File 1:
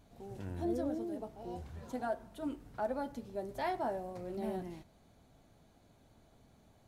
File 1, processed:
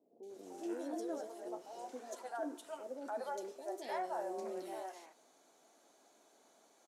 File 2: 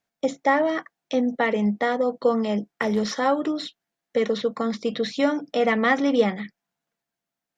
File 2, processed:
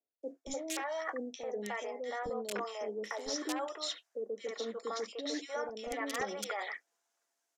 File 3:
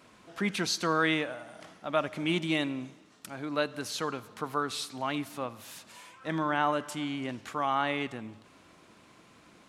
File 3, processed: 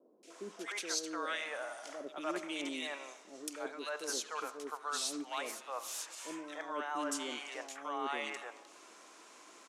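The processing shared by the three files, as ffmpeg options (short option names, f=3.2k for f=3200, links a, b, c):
-filter_complex "[0:a]highpass=f=350:w=0.5412,highpass=f=350:w=1.3066,acrossover=split=2000[a][b];[a]aeval=exprs='(mod(3.98*val(0)+1,2)-1)/3.98':c=same[c];[c][b]amix=inputs=2:normalize=0,aexciter=amount=3:drive=5.2:freq=5.7k,lowpass=7.4k,areverse,acompressor=threshold=-37dB:ratio=5,areverse,acrossover=split=520|2300[d][e][f];[f]adelay=230[g];[e]adelay=300[h];[d][h][g]amix=inputs=3:normalize=0,volume=3dB"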